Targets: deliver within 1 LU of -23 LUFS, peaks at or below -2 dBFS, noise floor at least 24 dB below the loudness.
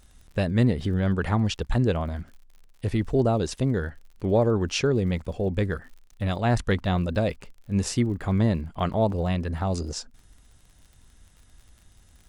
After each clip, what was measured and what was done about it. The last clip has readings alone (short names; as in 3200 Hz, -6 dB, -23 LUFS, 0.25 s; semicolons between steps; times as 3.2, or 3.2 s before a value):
ticks 54/s; loudness -26.0 LUFS; peak -9.5 dBFS; loudness target -23.0 LUFS
-> de-click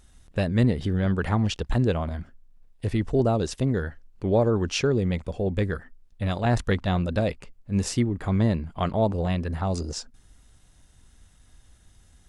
ticks 0.081/s; loudness -26.0 LUFS; peak -9.5 dBFS; loudness target -23.0 LUFS
-> gain +3 dB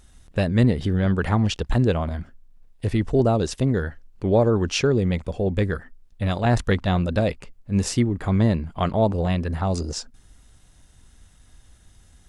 loudness -23.0 LUFS; peak -6.5 dBFS; noise floor -54 dBFS